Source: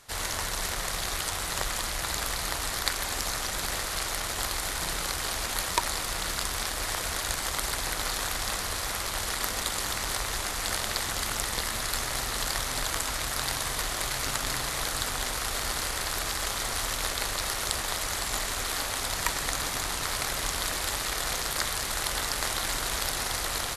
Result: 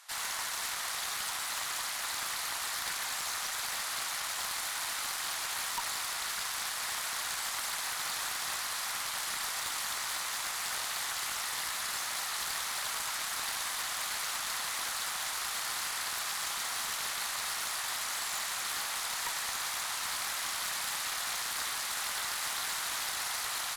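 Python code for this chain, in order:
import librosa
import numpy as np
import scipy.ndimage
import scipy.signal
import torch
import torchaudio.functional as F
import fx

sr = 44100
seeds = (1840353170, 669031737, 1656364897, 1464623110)

y = scipy.signal.sosfilt(scipy.signal.butter(4, 800.0, 'highpass', fs=sr, output='sos'), x)
y = fx.tube_stage(y, sr, drive_db=30.0, bias=0.2)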